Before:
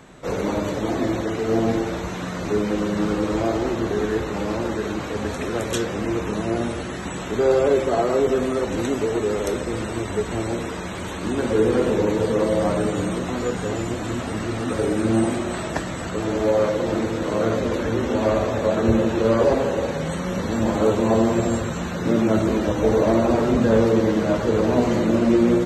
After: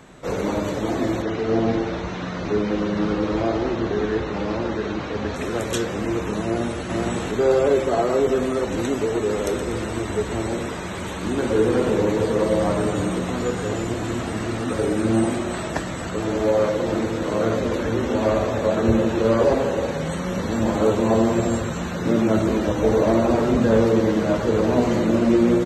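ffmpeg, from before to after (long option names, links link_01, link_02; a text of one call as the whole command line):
ffmpeg -i in.wav -filter_complex "[0:a]asettb=1/sr,asplit=3[link_01][link_02][link_03];[link_01]atrim=end=1.224[link_04];[link_02]atrim=start=1.22:end=5.36,asetpts=PTS-STARTPTS,afade=type=in:duration=0.004:curve=qsin,afade=type=out:start_time=4.136:duration=0.004:curve=qsin,lowpass=frequency=5600:width=0.5412,lowpass=frequency=5600:width=1.3066[link_05];[link_03]atrim=start=5.356[link_06];[link_04][link_05]acrossfade=duration=0.004:curve1=hsin:curve2=qsin[link_07];[link_07][link_06]acrossfade=duration=0.004:curve1=qsin:curve2=hsin,asplit=2[link_08][link_09];[link_09]afade=type=in:start_time=6.42:duration=0.01,afade=type=out:start_time=6.84:duration=0.01,aecho=0:1:470|940:0.841395|0.0841395[link_10];[link_08][link_10]amix=inputs=2:normalize=0,asplit=3[link_11][link_12][link_13];[link_11]afade=type=out:start_time=9.28:duration=0.02[link_14];[link_12]aecho=1:1:121|242|363|484|605|726:0.299|0.164|0.0903|0.0497|0.0273|0.015,afade=type=in:start_time=9.28:duration=0.02,afade=type=out:start_time=14.57:duration=0.02[link_15];[link_13]afade=type=in:start_time=14.57:duration=0.02[link_16];[link_14][link_15][link_16]amix=inputs=3:normalize=0" out.wav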